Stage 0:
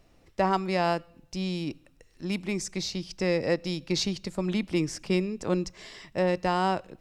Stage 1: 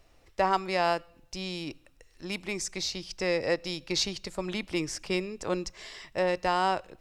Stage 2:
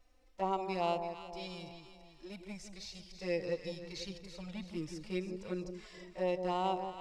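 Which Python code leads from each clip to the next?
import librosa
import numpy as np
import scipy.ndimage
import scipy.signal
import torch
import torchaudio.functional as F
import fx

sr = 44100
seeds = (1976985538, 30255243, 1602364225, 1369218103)

y1 = fx.peak_eq(x, sr, hz=190.0, db=-10.0, octaves=1.8)
y1 = y1 * librosa.db_to_amplitude(1.5)
y2 = fx.env_flanger(y1, sr, rest_ms=4.1, full_db=-22.0)
y2 = fx.hpss(y2, sr, part='percussive', gain_db=-14)
y2 = fx.echo_alternate(y2, sr, ms=165, hz=930.0, feedback_pct=64, wet_db=-6.5)
y2 = y2 * librosa.db_to_amplitude(-4.0)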